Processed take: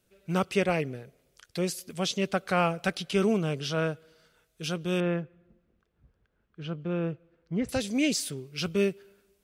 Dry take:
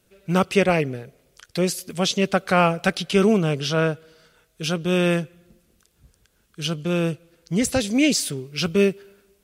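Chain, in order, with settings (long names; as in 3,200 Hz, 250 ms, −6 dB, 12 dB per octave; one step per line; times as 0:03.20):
0:05.00–0:07.69: low-pass filter 1,800 Hz 12 dB per octave
level −7.5 dB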